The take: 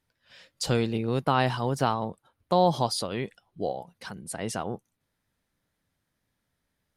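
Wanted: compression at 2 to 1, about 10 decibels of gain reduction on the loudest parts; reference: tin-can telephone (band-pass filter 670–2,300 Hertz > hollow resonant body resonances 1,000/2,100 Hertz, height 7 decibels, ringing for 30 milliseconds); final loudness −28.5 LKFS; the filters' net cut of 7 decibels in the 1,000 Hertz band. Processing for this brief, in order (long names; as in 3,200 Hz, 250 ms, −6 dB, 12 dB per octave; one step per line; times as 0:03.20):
parametric band 1,000 Hz −7.5 dB
downward compressor 2 to 1, threshold −39 dBFS
band-pass filter 670–2,300 Hz
hollow resonant body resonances 1,000/2,100 Hz, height 7 dB, ringing for 30 ms
level +17 dB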